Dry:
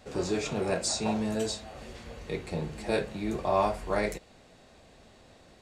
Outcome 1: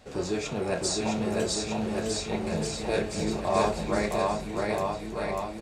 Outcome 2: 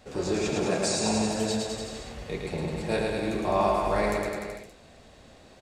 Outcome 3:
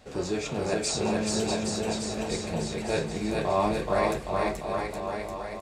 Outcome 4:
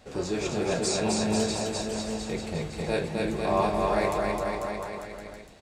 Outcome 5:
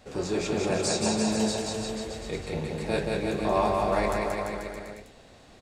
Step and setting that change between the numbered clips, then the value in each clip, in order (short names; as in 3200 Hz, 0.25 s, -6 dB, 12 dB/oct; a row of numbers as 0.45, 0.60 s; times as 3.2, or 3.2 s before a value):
bouncing-ball echo, first gap: 0.66, 0.11, 0.43, 0.26, 0.18 s